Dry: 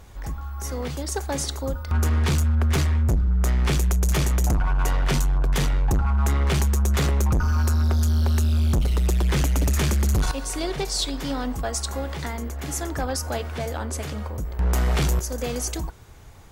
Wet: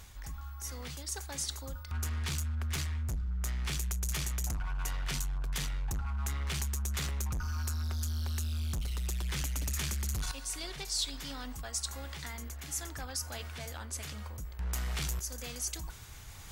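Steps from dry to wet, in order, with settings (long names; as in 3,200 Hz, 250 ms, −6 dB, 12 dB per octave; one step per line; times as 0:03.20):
guitar amp tone stack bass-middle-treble 5-5-5
reversed playback
upward compression, threshold −36 dBFS
reversed playback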